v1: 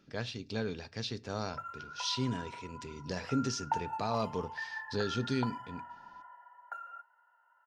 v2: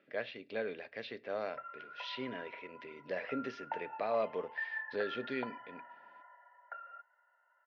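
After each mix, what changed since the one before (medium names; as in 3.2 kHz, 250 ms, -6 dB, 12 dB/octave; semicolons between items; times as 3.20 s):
background: send off; master: add cabinet simulation 400–2900 Hz, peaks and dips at 580 Hz +8 dB, 900 Hz -8 dB, 1.3 kHz -4 dB, 2 kHz +7 dB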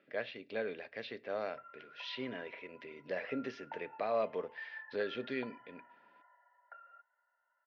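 background -7.5 dB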